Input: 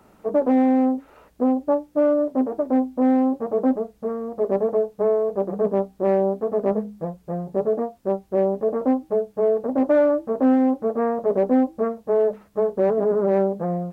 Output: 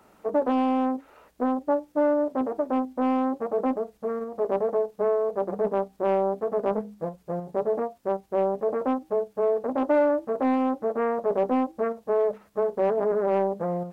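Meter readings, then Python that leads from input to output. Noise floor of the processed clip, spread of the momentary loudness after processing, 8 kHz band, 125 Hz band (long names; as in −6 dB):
−60 dBFS, 6 LU, can't be measured, −7.0 dB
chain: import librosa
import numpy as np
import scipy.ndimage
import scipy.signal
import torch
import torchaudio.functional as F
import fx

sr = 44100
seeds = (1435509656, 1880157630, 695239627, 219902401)

p1 = fx.low_shelf(x, sr, hz=310.0, db=-8.0)
p2 = fx.level_steps(p1, sr, step_db=16)
p3 = p1 + (p2 * librosa.db_to_amplitude(-2.0))
p4 = fx.doppler_dist(p3, sr, depth_ms=0.3)
y = p4 * librosa.db_to_amplitude(-3.0)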